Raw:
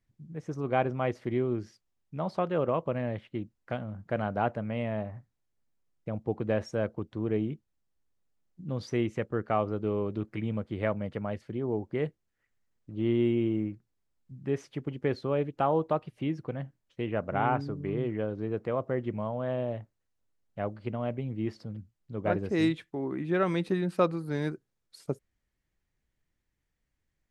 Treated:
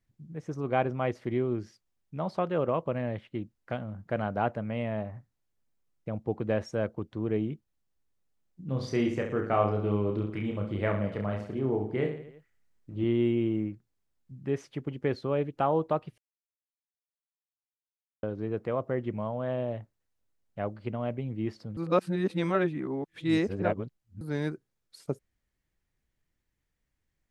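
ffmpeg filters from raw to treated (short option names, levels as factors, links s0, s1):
-filter_complex "[0:a]asettb=1/sr,asplit=3[s0][s1][s2];[s0]atrim=end=8.644[s3];[s1]atrim=start=8.64:end=13.04,asetpts=PTS-STARTPTS,afade=t=in:d=0.004:c=qsin,afade=t=out:st=4.396:d=0.004:c=qsin,aecho=1:1:30|67.5|114.4|173|246.2|337.8:0.631|0.398|0.251|0.158|0.1|0.0631,atrim=end_sample=194040[s4];[s2]atrim=start=13.036[s5];[s3][s4]acrossfade=d=0.004:c1=hsin:c2=qsin[s6];[s6][s5]acrossfade=d=0.004:c1=qsin:c2=hsin,asplit=5[s7][s8][s9][s10][s11];[s7]atrim=end=16.18,asetpts=PTS-STARTPTS,afade=t=out:st=16.176:d=0.004:c=hsin[s12];[s8]atrim=start=16.18:end=18.23,asetpts=PTS-STARTPTS,volume=0[s13];[s9]atrim=start=18.23:end=21.772,asetpts=PTS-STARTPTS,afade=t=in:d=0.004:c=hsin[s14];[s10]atrim=start=21.768:end=24.212,asetpts=PTS-STARTPTS,areverse[s15];[s11]atrim=start=24.208[s16];[s12][s13][s14]concat=n=3:v=0:a=1[s17];[s17][s15]acrossfade=d=0.004:c1=hsin:c2=hsin[s18];[s18][s16]acrossfade=d=0.004:c1=hsin:c2=hsin"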